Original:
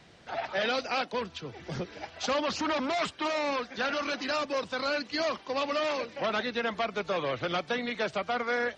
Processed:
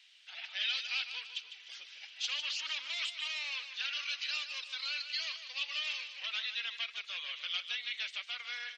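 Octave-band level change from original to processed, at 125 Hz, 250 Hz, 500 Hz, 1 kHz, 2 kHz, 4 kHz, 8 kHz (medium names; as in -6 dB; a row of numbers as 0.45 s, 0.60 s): under -40 dB, under -40 dB, -33.0 dB, -21.0 dB, -5.0 dB, +2.0 dB, -3.0 dB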